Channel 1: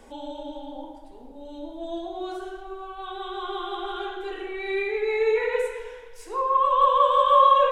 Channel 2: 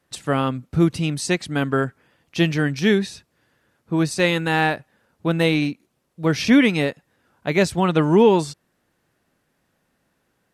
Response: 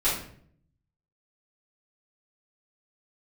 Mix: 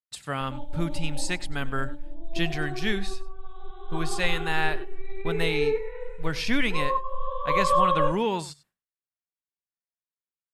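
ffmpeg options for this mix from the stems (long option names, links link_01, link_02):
-filter_complex "[0:a]aemphasis=mode=reproduction:type=riaa,adelay=400,volume=-5.5dB,asplit=3[link_01][link_02][link_03];[link_02]volume=-22dB[link_04];[link_03]volume=-15dB[link_05];[1:a]agate=range=-33dB:threshold=-48dB:ratio=3:detection=peak,equalizer=frequency=350:width_type=o:width=2:gain=-8,bandreject=frequency=5900:width=9.9,volume=-4.5dB,asplit=3[link_06][link_07][link_08];[link_07]volume=-19dB[link_09];[link_08]apad=whole_len=358033[link_10];[link_01][link_10]sidechaingate=range=-33dB:threshold=-40dB:ratio=16:detection=peak[link_11];[2:a]atrim=start_sample=2205[link_12];[link_04][link_12]afir=irnorm=-1:irlink=0[link_13];[link_05][link_09]amix=inputs=2:normalize=0,aecho=0:1:97:1[link_14];[link_11][link_06][link_13][link_14]amix=inputs=4:normalize=0,equalizer=frequency=180:width=0.33:gain=-2.5"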